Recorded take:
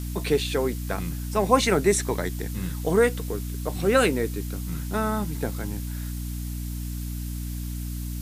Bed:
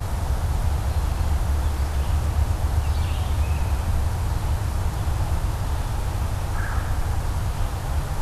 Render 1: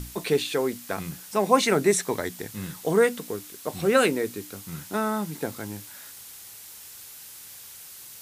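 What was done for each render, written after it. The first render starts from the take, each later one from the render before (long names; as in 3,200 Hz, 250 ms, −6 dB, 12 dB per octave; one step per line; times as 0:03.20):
mains-hum notches 60/120/180/240/300 Hz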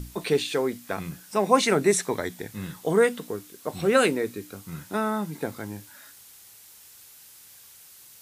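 noise reduction from a noise print 6 dB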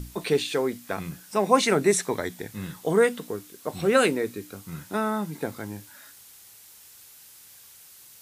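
no processing that can be heard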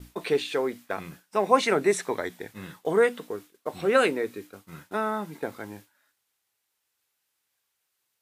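downward expander −36 dBFS
bass and treble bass −9 dB, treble −8 dB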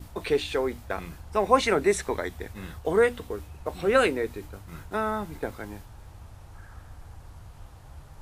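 mix in bed −21 dB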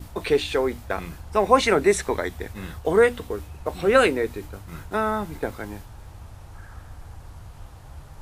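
level +4 dB
brickwall limiter −2 dBFS, peak gain reduction 1 dB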